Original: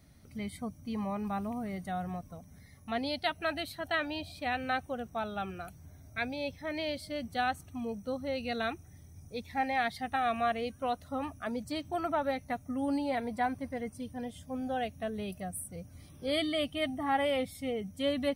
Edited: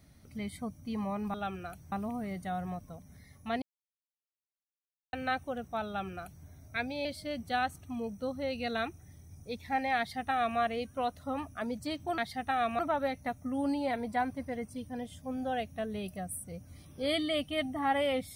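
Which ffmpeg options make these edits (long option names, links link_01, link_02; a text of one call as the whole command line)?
ffmpeg -i in.wav -filter_complex "[0:a]asplit=8[link_01][link_02][link_03][link_04][link_05][link_06][link_07][link_08];[link_01]atrim=end=1.342[link_09];[link_02]atrim=start=5.288:end=5.872[link_10];[link_03]atrim=start=1.338:end=3.04,asetpts=PTS-STARTPTS,afade=type=out:start_time=1.698:duration=0.004:curve=hsin[link_11];[link_04]atrim=start=3.04:end=4.55,asetpts=PTS-STARTPTS,volume=0[link_12];[link_05]atrim=start=4.55:end=6.472,asetpts=PTS-STARTPTS,afade=type=in:duration=0.004:curve=hsin[link_13];[link_06]atrim=start=6.898:end=12.032[link_14];[link_07]atrim=start=9.828:end=10.442[link_15];[link_08]atrim=start=12.028[link_16];[link_09][link_10]acrossfade=duration=0.004:curve1=hsin:curve2=hsin[link_17];[link_11][link_12][link_13]concat=n=3:v=0:a=1[link_18];[link_17][link_18]acrossfade=duration=0.004:curve1=hsin:curve2=hsin[link_19];[link_19][link_14]acrossfade=duration=0.004:curve1=hsin:curve2=hsin[link_20];[link_20][link_15]acrossfade=duration=0.004:curve1=hsin:curve2=hsin[link_21];[link_21][link_16]acrossfade=duration=0.004:curve1=hsin:curve2=hsin" out.wav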